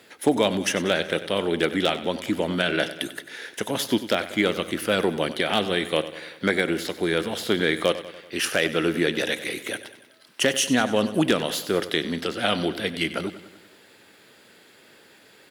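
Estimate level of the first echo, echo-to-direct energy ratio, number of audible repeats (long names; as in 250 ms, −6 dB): −14.0 dB, −12.5 dB, 5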